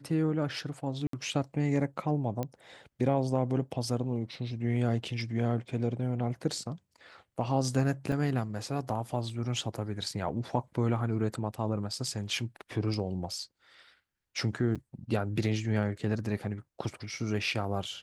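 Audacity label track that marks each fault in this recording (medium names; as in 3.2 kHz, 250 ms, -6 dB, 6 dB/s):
1.070000	1.130000	dropout 63 ms
2.430000	2.430000	pop -20 dBFS
8.120000	8.120000	dropout 2.7 ms
14.750000	14.760000	dropout 6.1 ms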